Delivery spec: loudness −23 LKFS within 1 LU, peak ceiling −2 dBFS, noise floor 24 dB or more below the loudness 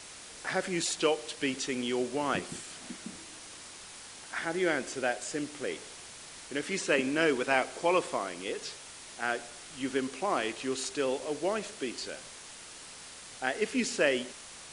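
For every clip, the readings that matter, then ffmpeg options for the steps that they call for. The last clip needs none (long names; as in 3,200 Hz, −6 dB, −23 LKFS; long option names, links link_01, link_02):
background noise floor −48 dBFS; target noise floor −56 dBFS; integrated loudness −32.0 LKFS; sample peak −11.5 dBFS; target loudness −23.0 LKFS
→ -af "afftdn=noise_reduction=8:noise_floor=-48"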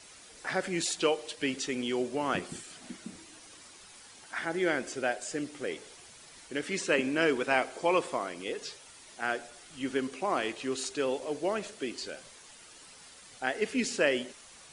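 background noise floor −53 dBFS; target noise floor −56 dBFS
→ -af "afftdn=noise_reduction=6:noise_floor=-53"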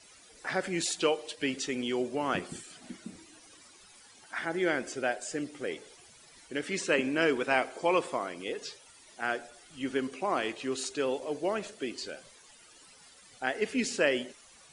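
background noise floor −57 dBFS; integrated loudness −32.0 LKFS; sample peak −11.5 dBFS; target loudness −23.0 LKFS
→ -af "volume=9dB"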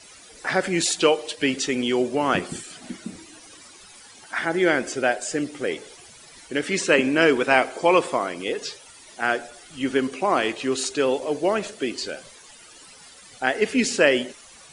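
integrated loudness −23.0 LKFS; sample peak −2.5 dBFS; background noise floor −48 dBFS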